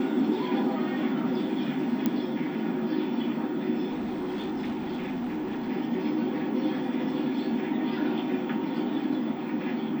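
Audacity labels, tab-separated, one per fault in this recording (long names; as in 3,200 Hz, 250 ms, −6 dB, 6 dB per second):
2.060000	2.060000	click −13 dBFS
3.900000	5.700000	clipping −28 dBFS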